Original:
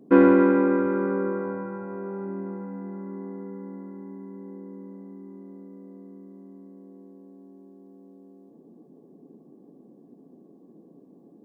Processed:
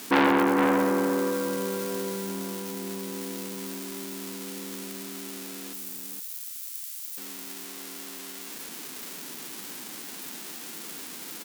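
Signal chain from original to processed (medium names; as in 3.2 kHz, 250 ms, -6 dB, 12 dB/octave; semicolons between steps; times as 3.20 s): zero-crossing glitches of -22 dBFS; 5.73–7.18 s: differentiator; delay 465 ms -7 dB; transformer saturation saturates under 1.8 kHz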